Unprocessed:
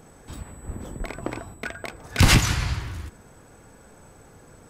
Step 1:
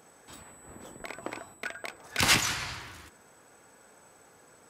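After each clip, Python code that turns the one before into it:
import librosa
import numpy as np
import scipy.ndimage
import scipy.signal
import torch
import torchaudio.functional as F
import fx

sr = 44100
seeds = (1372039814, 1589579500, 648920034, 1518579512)

y = fx.highpass(x, sr, hz=640.0, slope=6)
y = F.gain(torch.from_numpy(y), -2.5).numpy()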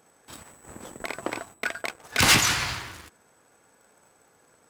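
y = fx.leveller(x, sr, passes=2)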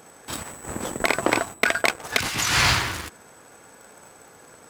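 y = fx.over_compress(x, sr, threshold_db=-29.0, ratio=-1.0)
y = F.gain(torch.from_numpy(y), 7.5).numpy()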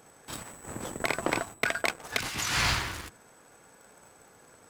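y = fx.octave_divider(x, sr, octaves=1, level_db=-6.0)
y = F.gain(torch.from_numpy(y), -7.5).numpy()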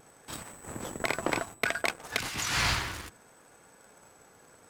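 y = fx.vibrato(x, sr, rate_hz=0.66, depth_cents=12.0)
y = F.gain(torch.from_numpy(y), -1.0).numpy()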